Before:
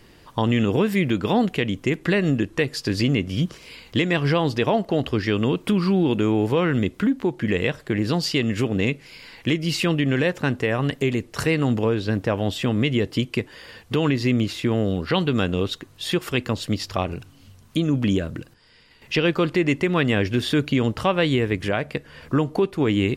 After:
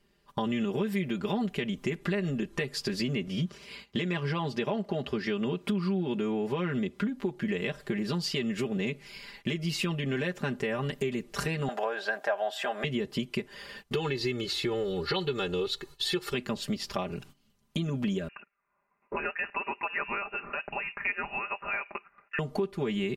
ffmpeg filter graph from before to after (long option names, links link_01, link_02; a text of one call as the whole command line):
ffmpeg -i in.wav -filter_complex "[0:a]asettb=1/sr,asplit=3[link_01][link_02][link_03];[link_01]atrim=end=3.274[link_04];[link_02]atrim=start=3.27:end=7.09,asetpts=PTS-STARTPTS,afade=type=in:duration=0.004:curve=qsin,afade=type=out:start_time=3.816:duration=0.004:curve=qsin,highpass=59,highshelf=frequency=9600:gain=-8.5[link_05];[link_03]atrim=start=7.086[link_06];[link_04][link_05]acrossfade=duration=0.004:curve1=hsin:curve2=qsin[link_07];[link_07][link_06]acrossfade=duration=0.004:curve1=qsin:curve2=hsin,asettb=1/sr,asplit=3[link_08][link_09][link_10];[link_08]atrim=end=11.684[link_11];[link_09]atrim=start=11.68:end=12.84,asetpts=PTS-STARTPTS,afade=type=in:duration=0.004:curve=qsin,afade=type=out:start_time=1.156:duration=0.004:curve=qsin,highpass=frequency=690:width_type=q:width=5.9,equalizer=frequency=1600:width_type=o:width=0.32:gain=11.5[link_12];[link_10]atrim=start=12.836[link_13];[link_11][link_12]acrossfade=duration=0.004:curve1=hsin:curve2=qsin[link_14];[link_14][link_13]acrossfade=duration=0.004:curve1=qsin:curve2=hsin,asettb=1/sr,asplit=3[link_15][link_16][link_17];[link_15]atrim=end=13.944[link_18];[link_16]atrim=start=13.94:end=16.34,asetpts=PTS-STARTPTS,afade=type=in:duration=0.004:curve=qsin,afade=type=out:start_time=2.396:duration=0.004:curve=qsin,equalizer=frequency=4200:width_type=o:width=0.32:gain=9,aecho=1:1:2.3:0.76,atrim=end_sample=105840[link_19];[link_17]atrim=start=16.336[link_20];[link_18][link_19]acrossfade=duration=0.004:curve1=hsin:curve2=qsin[link_21];[link_21][link_20]acrossfade=duration=0.004:curve1=qsin:curve2=hsin,asettb=1/sr,asplit=3[link_22][link_23][link_24];[link_22]atrim=end=18.284[link_25];[link_23]atrim=start=18.28:end=22.39,asetpts=PTS-STARTPTS,afade=type=in:duration=0.004:curve=qsin,afade=type=out:start_time=4.106:duration=0.004:curve=qsin,highpass=680,lowpass=frequency=2600:width_type=q:width=0.5098,lowpass=frequency=2600:width_type=q:width=0.6013,lowpass=frequency=2600:width_type=q:width=0.9,lowpass=frequency=2600:width_type=q:width=2.563,afreqshift=-3000[link_26];[link_24]atrim=start=22.386[link_27];[link_25][link_26]acrossfade=duration=0.004:curve1=hsin:curve2=qsin[link_28];[link_28][link_27]acrossfade=duration=0.004:curve1=qsin:curve2=hsin,agate=range=-16dB:threshold=-43dB:ratio=16:detection=peak,aecho=1:1:5:0.92,acompressor=threshold=-25dB:ratio=3,volume=-4.5dB" out.wav